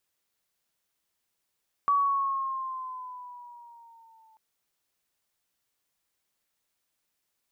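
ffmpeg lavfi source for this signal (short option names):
-f lavfi -i "aevalsrc='pow(10,(-19.5-37.5*t/2.49)/20)*sin(2*PI*1140*2.49/(-4.5*log(2)/12)*(exp(-4.5*log(2)/12*t/2.49)-1))':d=2.49:s=44100"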